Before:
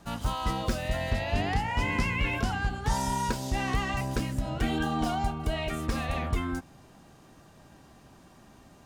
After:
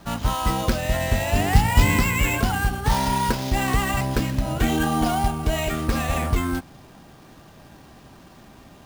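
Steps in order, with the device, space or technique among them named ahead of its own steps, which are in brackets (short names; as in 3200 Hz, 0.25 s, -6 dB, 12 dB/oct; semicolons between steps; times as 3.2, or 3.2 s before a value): 1.54–1.99 tone controls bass +7 dB, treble +10 dB; early companding sampler (sample-rate reducer 10000 Hz, jitter 0%; companded quantiser 6-bit); gain +7 dB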